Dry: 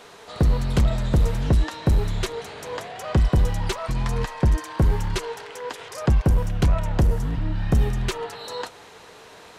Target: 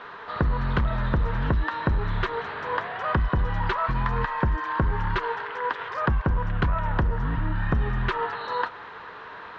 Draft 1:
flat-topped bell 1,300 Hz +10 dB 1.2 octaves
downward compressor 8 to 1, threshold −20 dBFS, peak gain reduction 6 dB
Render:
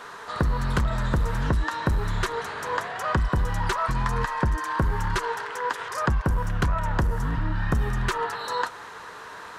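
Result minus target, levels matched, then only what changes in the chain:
4,000 Hz band +3.0 dB
add first: low-pass filter 3,600 Hz 24 dB per octave

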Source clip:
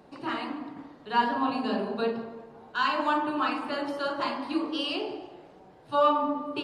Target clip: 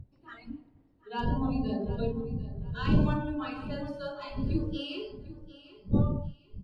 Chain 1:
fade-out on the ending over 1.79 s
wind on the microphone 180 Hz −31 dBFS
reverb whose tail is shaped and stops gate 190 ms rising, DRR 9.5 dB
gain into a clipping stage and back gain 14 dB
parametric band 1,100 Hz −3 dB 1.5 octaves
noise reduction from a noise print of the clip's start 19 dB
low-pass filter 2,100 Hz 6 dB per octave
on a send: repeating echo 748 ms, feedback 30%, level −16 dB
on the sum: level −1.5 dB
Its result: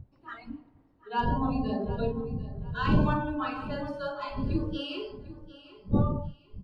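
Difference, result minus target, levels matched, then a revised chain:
1,000 Hz band +5.5 dB
fade-out on the ending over 1.79 s
wind on the microphone 180 Hz −31 dBFS
reverb whose tail is shaped and stops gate 190 ms rising, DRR 9.5 dB
gain into a clipping stage and back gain 14 dB
parametric band 1,100 Hz −10.5 dB 1.5 octaves
noise reduction from a noise print of the clip's start 19 dB
low-pass filter 2,100 Hz 6 dB per octave
on a send: repeating echo 748 ms, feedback 30%, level −16 dB
on the sum: level −1.5 dB

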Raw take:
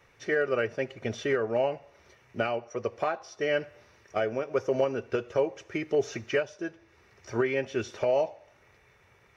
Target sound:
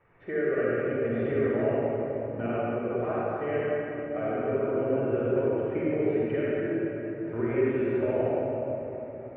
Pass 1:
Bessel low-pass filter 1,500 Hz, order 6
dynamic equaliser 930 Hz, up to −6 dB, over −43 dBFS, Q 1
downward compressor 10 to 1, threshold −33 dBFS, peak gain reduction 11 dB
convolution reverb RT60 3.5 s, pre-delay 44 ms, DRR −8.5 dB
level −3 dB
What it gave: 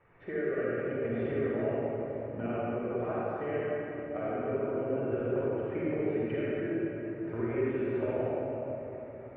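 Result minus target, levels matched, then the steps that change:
downward compressor: peak gain reduction +6 dB
change: downward compressor 10 to 1, threshold −26.5 dBFS, peak gain reduction 5.5 dB

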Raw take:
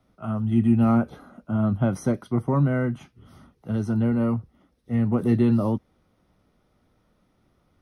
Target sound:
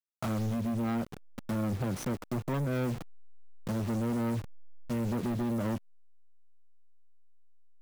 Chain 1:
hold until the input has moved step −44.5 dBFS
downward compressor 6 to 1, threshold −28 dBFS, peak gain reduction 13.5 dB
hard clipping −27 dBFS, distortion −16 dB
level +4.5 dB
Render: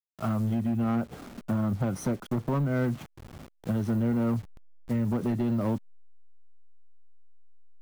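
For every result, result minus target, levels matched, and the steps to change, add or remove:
hard clipping: distortion −8 dB; hold until the input has moved: distortion −7 dB
change: hard clipping −33.5 dBFS, distortion −8 dB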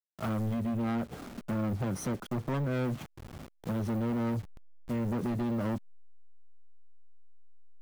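hold until the input has moved: distortion −7 dB
change: hold until the input has moved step −36 dBFS

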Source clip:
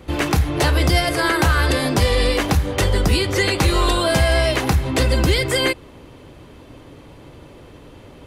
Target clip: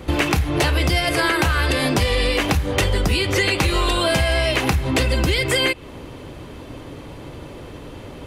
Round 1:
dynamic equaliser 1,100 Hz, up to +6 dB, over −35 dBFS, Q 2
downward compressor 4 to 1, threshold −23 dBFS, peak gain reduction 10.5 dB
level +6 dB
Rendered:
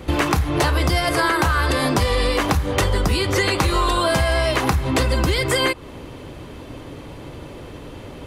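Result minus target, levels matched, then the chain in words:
1,000 Hz band +3.5 dB
dynamic equaliser 2,600 Hz, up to +6 dB, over −35 dBFS, Q 2
downward compressor 4 to 1, threshold −23 dBFS, peak gain reduction 10 dB
level +6 dB

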